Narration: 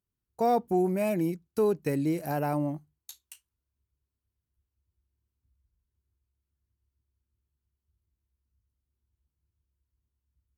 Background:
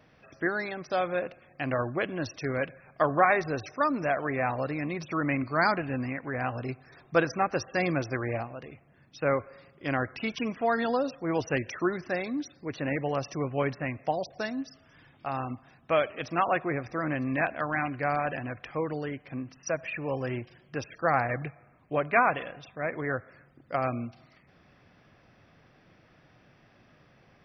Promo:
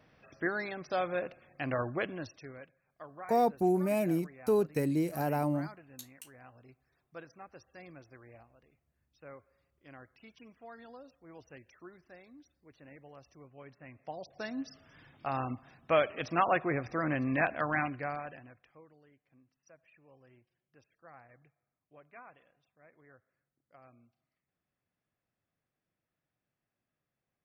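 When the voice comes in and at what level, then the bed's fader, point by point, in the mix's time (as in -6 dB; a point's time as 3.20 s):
2.90 s, -2.0 dB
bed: 2.06 s -4 dB
2.73 s -23.5 dB
13.63 s -23.5 dB
14.70 s -1.5 dB
17.79 s -1.5 dB
18.94 s -29.5 dB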